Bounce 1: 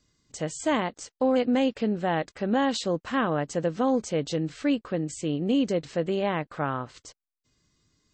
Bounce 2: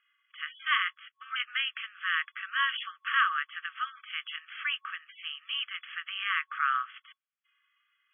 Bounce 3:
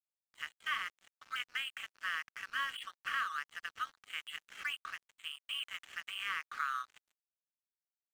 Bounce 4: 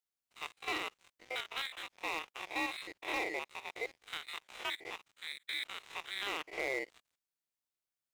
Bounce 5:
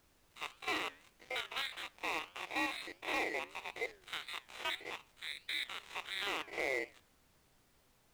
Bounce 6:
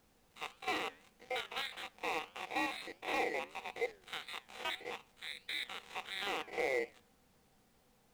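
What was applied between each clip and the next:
FFT band-pass 1100–3400 Hz; gain +7 dB
dynamic EQ 1000 Hz, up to +3 dB, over -35 dBFS, Q 1.1; compressor 3:1, threshold -31 dBFS, peak gain reduction 10 dB; crossover distortion -45.5 dBFS; gain -2.5 dB
stepped spectrum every 50 ms; ring modulator 800 Hz; overloaded stage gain 33.5 dB; gain +6 dB
added noise pink -70 dBFS; flange 1.6 Hz, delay 7.3 ms, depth 5.6 ms, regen -87%; gain +4.5 dB
small resonant body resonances 210/480/760 Hz, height 9 dB, ringing for 45 ms; gain -1.5 dB

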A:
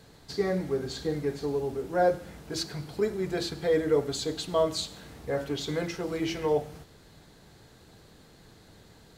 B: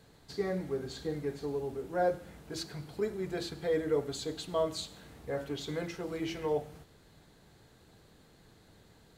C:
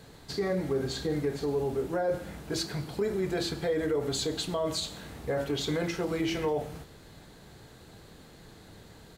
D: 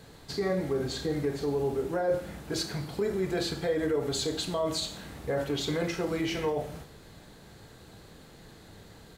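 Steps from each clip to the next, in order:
bell 5300 Hz -3 dB 0.59 oct; gain -5.5 dB
limiter -30 dBFS, peak gain reduction 11.5 dB; doubler 30 ms -13 dB; gain +8.5 dB
Schroeder reverb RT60 0.39 s, combs from 28 ms, DRR 10 dB

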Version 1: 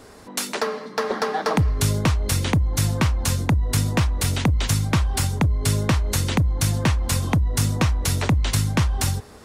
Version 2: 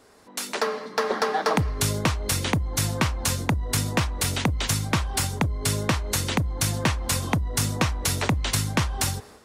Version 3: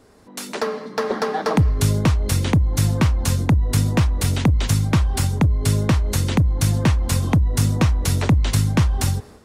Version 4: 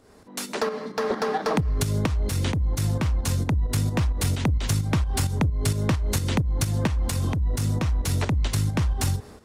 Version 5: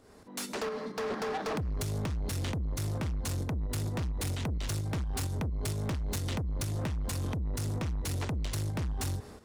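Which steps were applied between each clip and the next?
low shelf 200 Hz -8 dB; AGC gain up to 11.5 dB; gain -8.5 dB
low shelf 360 Hz +11.5 dB; gain -1.5 dB
compressor, threshold -17 dBFS, peak gain reduction 6 dB; soft clip -14 dBFS, distortion -21 dB; pump 131 bpm, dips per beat 2, -7 dB, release 0.19 s
soft clip -27 dBFS, distortion -10 dB; gain -3 dB

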